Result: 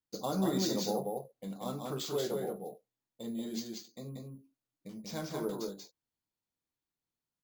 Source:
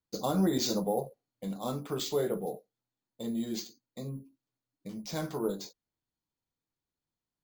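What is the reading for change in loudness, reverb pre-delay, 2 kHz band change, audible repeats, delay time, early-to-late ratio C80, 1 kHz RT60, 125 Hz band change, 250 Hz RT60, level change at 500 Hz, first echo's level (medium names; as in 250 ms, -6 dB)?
-3.0 dB, no reverb, -2.5 dB, 1, 185 ms, no reverb, no reverb, -3.5 dB, no reverb, -2.5 dB, -3.0 dB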